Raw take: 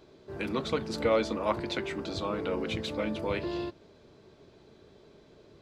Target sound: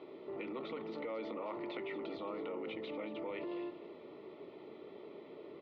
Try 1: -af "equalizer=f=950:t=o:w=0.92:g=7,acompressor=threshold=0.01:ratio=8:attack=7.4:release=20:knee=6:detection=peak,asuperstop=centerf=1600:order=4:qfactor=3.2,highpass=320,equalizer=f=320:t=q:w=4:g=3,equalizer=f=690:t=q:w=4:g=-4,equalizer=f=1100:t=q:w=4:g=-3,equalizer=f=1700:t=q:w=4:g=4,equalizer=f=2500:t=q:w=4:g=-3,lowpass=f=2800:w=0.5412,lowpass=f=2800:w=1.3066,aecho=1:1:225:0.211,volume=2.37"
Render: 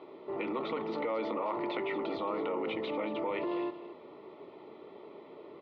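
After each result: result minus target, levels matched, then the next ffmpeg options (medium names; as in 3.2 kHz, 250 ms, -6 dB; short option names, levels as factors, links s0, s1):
compression: peak gain reduction -5.5 dB; 1 kHz band +2.0 dB
-af "equalizer=f=950:t=o:w=0.92:g=7,acompressor=threshold=0.00376:ratio=8:attack=7.4:release=20:knee=6:detection=peak,asuperstop=centerf=1600:order=4:qfactor=3.2,highpass=320,equalizer=f=320:t=q:w=4:g=3,equalizer=f=690:t=q:w=4:g=-4,equalizer=f=1100:t=q:w=4:g=-3,equalizer=f=1700:t=q:w=4:g=4,equalizer=f=2500:t=q:w=4:g=-3,lowpass=f=2800:w=0.5412,lowpass=f=2800:w=1.3066,aecho=1:1:225:0.211,volume=2.37"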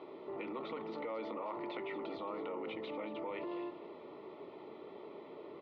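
1 kHz band +3.5 dB
-af "acompressor=threshold=0.00376:ratio=8:attack=7.4:release=20:knee=6:detection=peak,asuperstop=centerf=1600:order=4:qfactor=3.2,highpass=320,equalizer=f=320:t=q:w=4:g=3,equalizer=f=690:t=q:w=4:g=-4,equalizer=f=1100:t=q:w=4:g=-3,equalizer=f=1700:t=q:w=4:g=4,equalizer=f=2500:t=q:w=4:g=-3,lowpass=f=2800:w=0.5412,lowpass=f=2800:w=1.3066,aecho=1:1:225:0.211,volume=2.37"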